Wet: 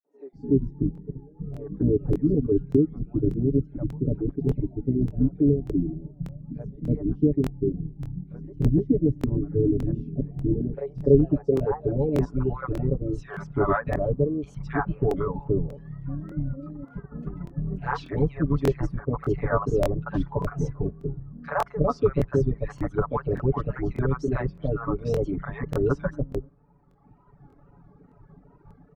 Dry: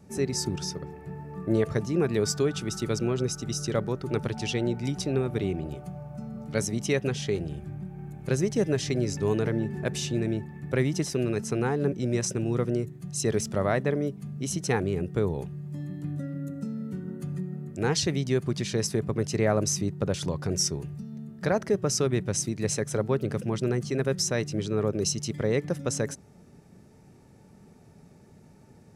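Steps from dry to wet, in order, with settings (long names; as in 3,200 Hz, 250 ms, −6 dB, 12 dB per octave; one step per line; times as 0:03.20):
sub-octave generator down 2 octaves, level −1 dB
tape wow and flutter 140 cents
comb filter 7 ms, depth 99%
0:16.20–0:16.79: output level in coarse steps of 10 dB
low-pass filter sweep 300 Hz → 1,200 Hz, 0:10.10–0:12.74
three-band delay without the direct sound highs, mids, lows 40/330 ms, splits 640/2,200 Hz
reverb reduction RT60 1.7 s
regular buffer underruns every 0.59 s, samples 1,024, repeat, from 0:00.93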